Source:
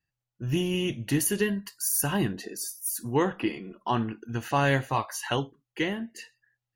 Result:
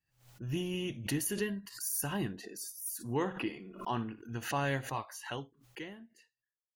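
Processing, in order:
fade-out on the ending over 2.23 s
0:02.99–0:04.34: flutter between parallel walls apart 10 metres, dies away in 0.22 s
background raised ahead of every attack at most 120 dB per second
level −8.5 dB

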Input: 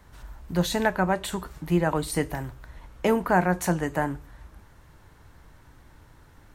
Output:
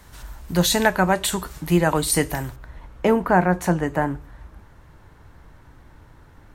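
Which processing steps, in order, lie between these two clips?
parametric band 12,000 Hz +8 dB 2.8 octaves, from 0:02.56 −7 dB
level +4.5 dB

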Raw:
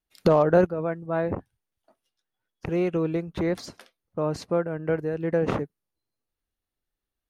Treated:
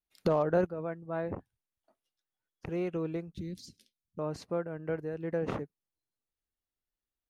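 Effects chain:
0:03.32–0:04.19: Chebyshev band-stop filter 220–4,100 Hz, order 2
level −8.5 dB

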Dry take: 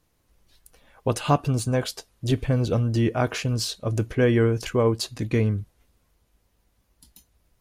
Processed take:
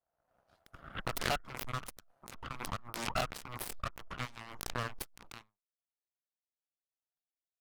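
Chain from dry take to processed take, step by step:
adaptive Wiener filter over 25 samples
high-shelf EQ 9,000 Hz +11.5 dB
downward compressor 2.5 to 1, threshold −40 dBFS, peak gain reduction 17 dB
four-pole ladder high-pass 620 Hz, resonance 70%
harmonic generator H 3 −15 dB, 5 −41 dB, 7 −22 dB, 8 −8 dB, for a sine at −28.5 dBFS
soft clipping −37.5 dBFS, distortion −11 dB
harmonic generator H 3 −8 dB, 4 −29 dB, 6 −30 dB, 8 −23 dB, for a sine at −37.5 dBFS
background raised ahead of every attack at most 48 dB per second
level +10.5 dB

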